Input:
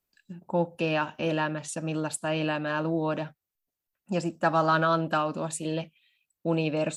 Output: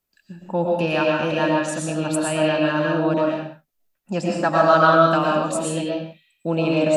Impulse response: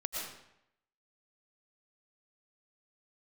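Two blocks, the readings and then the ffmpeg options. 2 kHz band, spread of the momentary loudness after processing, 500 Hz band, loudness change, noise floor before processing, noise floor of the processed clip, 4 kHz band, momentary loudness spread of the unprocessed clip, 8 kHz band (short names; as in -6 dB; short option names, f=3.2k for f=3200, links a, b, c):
+7.5 dB, 14 LU, +9.5 dB, +8.0 dB, under -85 dBFS, -72 dBFS, +7.5 dB, 11 LU, +6.5 dB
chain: -filter_complex "[1:a]atrim=start_sample=2205,afade=t=out:st=0.38:d=0.01,atrim=end_sample=17199[a];[0:a][a]afir=irnorm=-1:irlink=0,volume=5dB"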